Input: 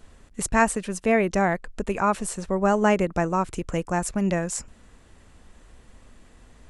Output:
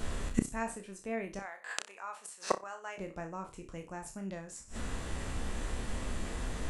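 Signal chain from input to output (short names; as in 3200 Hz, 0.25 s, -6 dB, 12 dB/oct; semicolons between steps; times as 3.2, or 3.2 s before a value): spectral trails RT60 0.30 s; 1.39–2.98 HPF 890 Hz 12 dB/oct; flipped gate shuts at -25 dBFS, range -31 dB; flutter echo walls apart 5.3 m, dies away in 0.21 s; gain +12.5 dB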